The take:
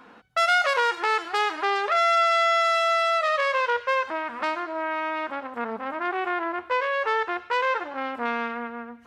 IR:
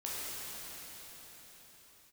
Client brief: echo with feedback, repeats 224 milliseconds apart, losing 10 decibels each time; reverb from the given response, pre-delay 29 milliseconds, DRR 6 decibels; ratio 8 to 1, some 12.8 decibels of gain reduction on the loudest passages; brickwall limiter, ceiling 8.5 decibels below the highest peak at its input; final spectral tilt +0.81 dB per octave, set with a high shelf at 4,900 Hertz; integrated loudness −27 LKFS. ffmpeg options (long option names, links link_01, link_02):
-filter_complex "[0:a]highshelf=frequency=4900:gain=4,acompressor=threshold=-29dB:ratio=8,alimiter=level_in=1dB:limit=-24dB:level=0:latency=1,volume=-1dB,aecho=1:1:224|448|672|896:0.316|0.101|0.0324|0.0104,asplit=2[link_01][link_02];[1:a]atrim=start_sample=2205,adelay=29[link_03];[link_02][link_03]afir=irnorm=-1:irlink=0,volume=-10dB[link_04];[link_01][link_04]amix=inputs=2:normalize=0,volume=7.5dB"